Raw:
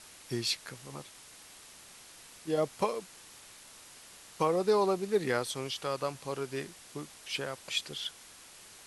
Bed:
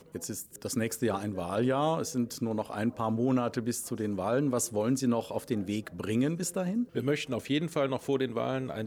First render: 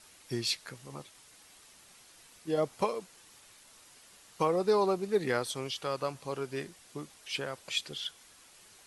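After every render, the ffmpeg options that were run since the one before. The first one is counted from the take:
-af "afftdn=nr=6:nf=-53"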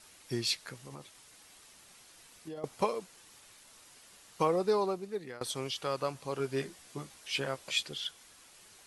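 -filter_complex "[0:a]asettb=1/sr,asplit=3[a][b][c];[a]atrim=end=0.834[d];[b]atrim=start=0.83:end=2.64,asetpts=PTS-STARTPTS,afade=t=in:d=0.004:c=qsin,afade=t=out:st=1.806:d=0.004:c=qsin,acompressor=threshold=-40dB:ratio=6:attack=3.2:release=140:knee=1:detection=peak[e];[c]atrim=start=2.636[f];[d][e]acrossfade=d=0.004:c1=hsin:c2=qsin[g];[g][f]acrossfade=d=0.004:c1=qsin:c2=hsin,asettb=1/sr,asplit=3[h][i][j];[h]atrim=end=6.384[k];[i]atrim=start=6.38:end=7.83,asetpts=PTS-STARTPTS,afade=t=in:d=0.004:c=qsin,afade=t=out:st=1.446:d=0.004:c=qsin,asplit=2[l][m];[m]adelay=15,volume=-4dB[n];[l][n]amix=inputs=2:normalize=0,atrim=end_sample=63945[o];[j]atrim=start=7.826[p];[k][o]acrossfade=d=0.004:c1=hsin:c2=qsin[q];[q][p]acrossfade=d=0.004:c1=qsin:c2=hsin,asplit=2[r][s];[r]atrim=end=5.41,asetpts=PTS-STARTPTS,afade=t=out:st=4.5:d=0.91:silence=0.1[t];[s]atrim=start=5.41,asetpts=PTS-STARTPTS,afade=t=in:d=0.004:c=hsin:silence=0.1[u];[t][u]concat=n=2:v=0:a=1"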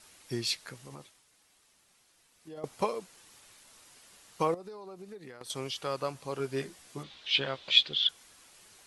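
-filter_complex "[0:a]asettb=1/sr,asplit=3[a][b][c];[a]atrim=end=4.544[d];[b]atrim=start=4.54:end=5.5,asetpts=PTS-STARTPTS,afade=t=in:d=0.004:c=qsin,afade=t=out:st=0.956:d=0.004:c=qsin,acompressor=threshold=-41dB:ratio=16:attack=3.2:release=140:knee=1:detection=peak[e];[c]atrim=start=5.496[f];[d][e]acrossfade=d=0.004:c1=hsin:c2=qsin[g];[g][f]acrossfade=d=0.004:c1=qsin:c2=hsin,asettb=1/sr,asplit=3[h][i][j];[h]atrim=end=7.034[k];[i]atrim=start=7.03:end=8.09,asetpts=PTS-STARTPTS,afade=t=in:d=0.004:c=qsin,afade=t=out:st=1.056:d=0.004:c=qsin,lowpass=f=3.6k:t=q:w=4[l];[j]atrim=start=8.086[m];[k][l]acrossfade=d=0.004:c1=hsin:c2=qsin[n];[n][m]acrossfade=d=0.004:c1=qsin:c2=hsin,asplit=3[o][p][q];[o]atrim=end=1.27,asetpts=PTS-STARTPTS,afade=t=out:st=1:d=0.27:c=qua:silence=0.334965[r];[p]atrim=start=1.27:end=2.32,asetpts=PTS-STARTPTS,volume=-9.5dB[s];[q]atrim=start=2.32,asetpts=PTS-STARTPTS,afade=t=in:d=0.27:c=qua:silence=0.334965[t];[r][s][t]concat=n=3:v=0:a=1"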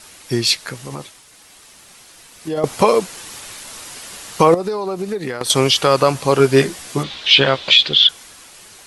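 -af "dynaudnorm=f=230:g=11:m=7.5dB,alimiter=level_in=15dB:limit=-1dB:release=50:level=0:latency=1"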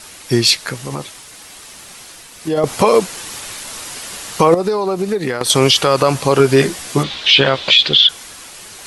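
-af "areverse,acompressor=mode=upward:threshold=-36dB:ratio=2.5,areverse,alimiter=level_in=5dB:limit=-1dB:release=50:level=0:latency=1"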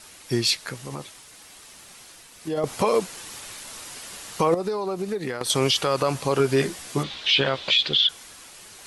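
-af "volume=-9.5dB"

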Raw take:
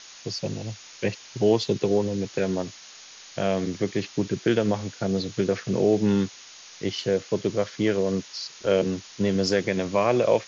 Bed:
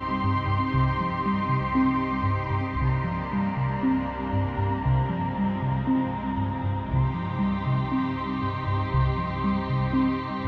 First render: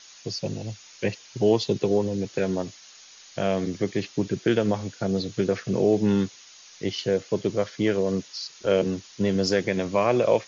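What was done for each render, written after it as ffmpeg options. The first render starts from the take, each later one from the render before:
-af "afftdn=nr=6:nf=-46"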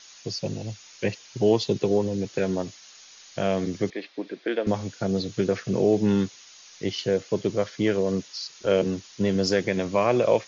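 -filter_complex "[0:a]asettb=1/sr,asplit=3[a][b][c];[a]atrim=end=3.904[d];[b]atrim=start=3.9:end=4.67,asetpts=PTS-STARTPTS,afade=t=in:d=0.004:c=qsin,afade=t=out:st=0.766:d=0.004:c=qsin,highpass=f=310:w=0.5412,highpass=f=310:w=1.3066,equalizer=f=390:t=q:w=4:g=-7,equalizer=f=890:t=q:w=4:g=-4,equalizer=f=1.3k:t=q:w=4:g=-5,equalizer=f=2.9k:t=q:w=4:g=-7,lowpass=f=3.8k:w=0.5412,lowpass=f=3.8k:w=1.3066[e];[c]atrim=start=4.666[f];[d][e]acrossfade=d=0.004:c1=hsin:c2=qsin[g];[g][f]acrossfade=d=0.004:c1=qsin:c2=hsin"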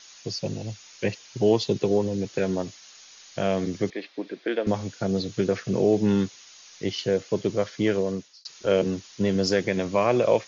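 -filter_complex "[0:a]asplit=2[a][b];[a]atrim=end=8.45,asetpts=PTS-STARTPTS,afade=t=out:st=7.97:d=0.48[c];[b]atrim=start=8.45,asetpts=PTS-STARTPTS,afade=t=in:d=0.004:c=hsin[d];[c][d]concat=n=2:v=0:a=1"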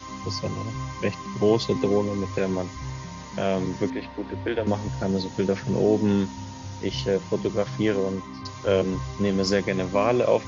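-filter_complex "[1:a]volume=-10dB[a];[0:a][a]amix=inputs=2:normalize=0"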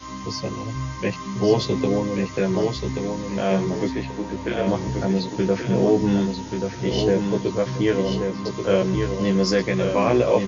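-filter_complex "[0:a]asplit=2[a][b];[b]adelay=16,volume=-2.5dB[c];[a][c]amix=inputs=2:normalize=0,aecho=1:1:1133|2266|3399|4532:0.531|0.17|0.0544|0.0174"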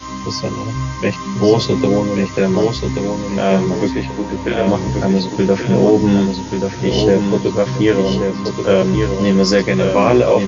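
-af "volume=7dB,alimiter=limit=-1dB:level=0:latency=1"

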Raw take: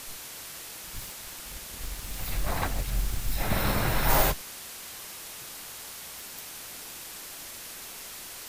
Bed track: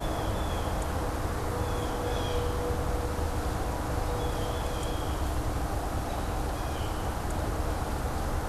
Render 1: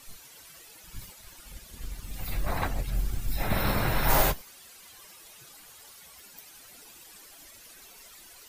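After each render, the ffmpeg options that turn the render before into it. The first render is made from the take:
-af "afftdn=nr=13:nf=-42"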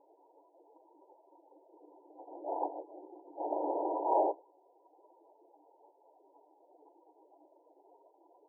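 -af "afftfilt=real='re*between(b*sr/4096,280,1000)':imag='im*between(b*sr/4096,280,1000)':win_size=4096:overlap=0.75"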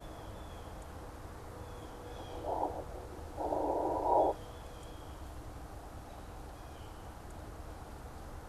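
-filter_complex "[1:a]volume=-16.5dB[a];[0:a][a]amix=inputs=2:normalize=0"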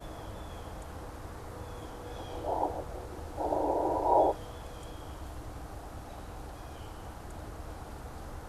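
-af "volume=4dB"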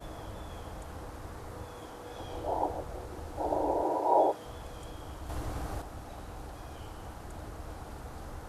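-filter_complex "[0:a]asettb=1/sr,asplit=3[a][b][c];[a]atrim=end=1.664[d];[b]atrim=start=1.66:end=2.2,asetpts=PTS-STARTPTS,afade=t=in:d=0.004:c=qsin,afade=t=out:st=0.536:d=0.004:c=qsin,lowshelf=f=140:g=-8.5[e];[c]atrim=start=2.196[f];[d][e]acrossfade=d=0.004:c1=hsin:c2=qsin[g];[g][f]acrossfade=d=0.004:c1=qsin:c2=hsin,asettb=1/sr,asplit=3[h][i][j];[h]atrim=end=3.834[k];[i]atrim=start=3.83:end=4.46,asetpts=PTS-STARTPTS,afade=t=in:d=0.004:c=qsin,afade=t=out:st=0.626:d=0.004:c=qsin,highpass=190[l];[j]atrim=start=4.456[m];[k][l]acrossfade=d=0.004:c1=hsin:c2=qsin[n];[n][m]acrossfade=d=0.004:c1=qsin:c2=hsin,asettb=1/sr,asplit=3[o][p][q];[o]atrim=end=5.294[r];[p]atrim=start=5.29:end=5.82,asetpts=PTS-STARTPTS,afade=t=in:d=0.004:c=qsin,afade=t=out:st=0.526:d=0.004:c=qsin,acontrast=57[s];[q]atrim=start=5.816[t];[r][s]acrossfade=d=0.004:c1=hsin:c2=qsin[u];[u][t]acrossfade=d=0.004:c1=qsin:c2=hsin"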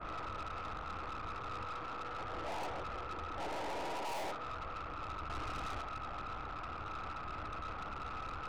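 -af "lowpass=f=1.3k:t=q:w=14,aeval=exprs='(tanh(89.1*val(0)+0.6)-tanh(0.6))/89.1':c=same"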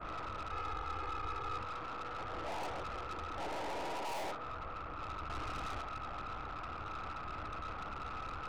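-filter_complex "[0:a]asettb=1/sr,asplit=3[a][b][c];[a]atrim=end=0.514[d];[b]atrim=start=0.51:end=1.58,asetpts=PTS-STARTPTS,afade=t=in:d=0.004:c=qsin,afade=t=out:st=1.066:d=0.004:c=qsin,aecho=1:1:2.4:0.65,atrim=end_sample=47187[e];[c]atrim=start=1.576[f];[d][e]acrossfade=d=0.004:c1=hsin:c2=qsin[g];[g][f]acrossfade=d=0.004:c1=qsin:c2=hsin,asettb=1/sr,asplit=3[h][i][j];[h]atrim=end=2.654[k];[i]atrim=start=2.65:end=3.4,asetpts=PTS-STARTPTS,afade=t=in:d=0.004:c=qsin,afade=t=out:st=0.746:d=0.004:c=qsin,highshelf=f=5.9k:g=6[l];[j]atrim=start=3.396[m];[k][l]acrossfade=d=0.004:c1=hsin:c2=qsin[n];[n][m]acrossfade=d=0.004:c1=qsin:c2=hsin,asettb=1/sr,asplit=3[o][p][q];[o]atrim=end=4.354[r];[p]atrim=start=4.35:end=4.99,asetpts=PTS-STARTPTS,afade=t=in:d=0.004:c=qsin,afade=t=out:st=0.636:d=0.004:c=qsin,equalizer=f=11k:t=o:w=2.8:g=-6[s];[q]atrim=start=4.986[t];[r][s]acrossfade=d=0.004:c1=hsin:c2=qsin[u];[u][t]acrossfade=d=0.004:c1=qsin:c2=hsin"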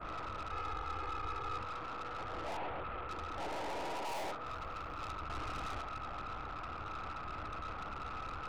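-filter_complex "[0:a]asettb=1/sr,asplit=3[a][b][c];[a]atrim=end=2.574[d];[b]atrim=start=2.57:end=3.09,asetpts=PTS-STARTPTS,afade=t=in:d=0.004:c=qsin,afade=t=out:st=0.516:d=0.004:c=qsin,lowpass=f=3.1k:w=0.5412,lowpass=f=3.1k:w=1.3066[e];[c]atrim=start=3.086[f];[d][e]acrossfade=d=0.004:c1=hsin:c2=qsin[g];[g][f]acrossfade=d=0.004:c1=qsin:c2=hsin,asettb=1/sr,asplit=3[h][i][j];[h]atrim=end=4.464[k];[i]atrim=start=4.46:end=5.11,asetpts=PTS-STARTPTS,afade=t=in:d=0.004:c=qsin,afade=t=out:st=0.646:d=0.004:c=qsin,highshelf=f=4.7k:g=11[l];[j]atrim=start=5.106[m];[k][l]acrossfade=d=0.004:c1=hsin:c2=qsin[n];[n][m]acrossfade=d=0.004:c1=qsin:c2=hsin"

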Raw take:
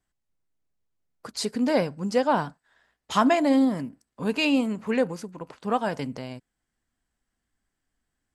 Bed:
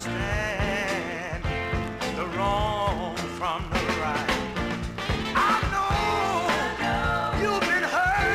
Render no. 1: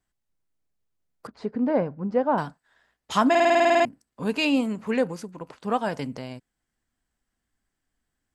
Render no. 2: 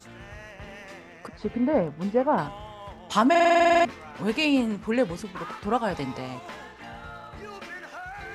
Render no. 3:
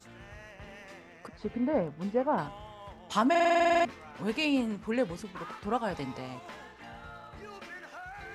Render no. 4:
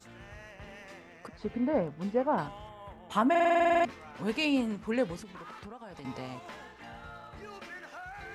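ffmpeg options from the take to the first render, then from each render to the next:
-filter_complex "[0:a]asettb=1/sr,asplit=3[a][b][c];[a]atrim=end=1.274[d];[b]atrim=start=1.27:end=2.38,asetpts=PTS-STARTPTS,afade=t=in:d=0.004:c=qsin,afade=t=out:st=1.106:d=0.004:c=qsin,lowpass=1.3k[e];[c]atrim=start=2.376[f];[d][e]acrossfade=d=0.004:c1=hsin:c2=qsin[g];[g][f]acrossfade=d=0.004:c1=qsin:c2=hsin,asplit=12[h][i][j][k][l][m][n][o][p][q][r][s];[h]atrim=end=3.352[t];[i]atrim=start=3.298:end=3.352[u];[j]atrim=start=3.298:end=3.352[v];[k]atrim=start=3.298:end=3.352[w];[l]atrim=start=3.298:end=3.352[x];[m]atrim=start=3.298:end=3.352[y];[n]atrim=start=3.298:end=3.352[z];[o]atrim=start=3.298:end=3.352[aa];[p]atrim=start=3.298:end=3.352[ab];[q]atrim=start=3.298:end=3.352[ac];[r]atrim=start=3.298:end=3.352[ad];[s]atrim=start=3.848[ae];[t][u]acrossfade=d=0.004:c1=hsin:c2=hsin[af];[af][v]acrossfade=d=0.004:c1=hsin:c2=hsin[ag];[ag][w]acrossfade=d=0.004:c1=hsin:c2=hsin[ah];[ah][x]acrossfade=d=0.004:c1=hsin:c2=hsin[ai];[ai][y]acrossfade=d=0.004:c1=hsin:c2=hsin[aj];[aj][z]acrossfade=d=0.004:c1=hsin:c2=hsin[ak];[ak][aa]acrossfade=d=0.004:c1=hsin:c2=hsin[al];[al][ab]acrossfade=d=0.004:c1=hsin:c2=hsin[am];[am][ac]acrossfade=d=0.004:c1=hsin:c2=hsin[an];[an][ad]acrossfade=d=0.004:c1=hsin:c2=hsin[ao];[ao][ae]acrossfade=d=0.004:c1=hsin:c2=hsin"
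-filter_complex "[1:a]volume=-16dB[a];[0:a][a]amix=inputs=2:normalize=0"
-af "volume=-5.5dB"
-filter_complex "[0:a]asettb=1/sr,asplit=3[a][b][c];[a]atrim=end=2.694[d];[b]atrim=start=2.69:end=3.84,asetpts=PTS-STARTPTS,afade=t=in:d=0.004:c=qsin,afade=t=out:st=1.146:d=0.004:c=qsin,equalizer=f=5.2k:t=o:w=0.81:g=-15[e];[c]atrim=start=3.836[f];[d][e]acrossfade=d=0.004:c1=hsin:c2=qsin[g];[g][f]acrossfade=d=0.004:c1=qsin:c2=hsin,asettb=1/sr,asplit=3[h][i][j];[h]atrim=end=5.184[k];[i]atrim=start=5.18:end=6.05,asetpts=PTS-STARTPTS,afade=t=in:d=0.004:c=qsin,afade=t=out:st=0.866:d=0.004:c=qsin,acompressor=threshold=-41dB:ratio=10:attack=3.2:release=140:knee=1:detection=peak[l];[j]atrim=start=6.046[m];[k][l]acrossfade=d=0.004:c1=hsin:c2=qsin[n];[n][m]acrossfade=d=0.004:c1=qsin:c2=hsin"

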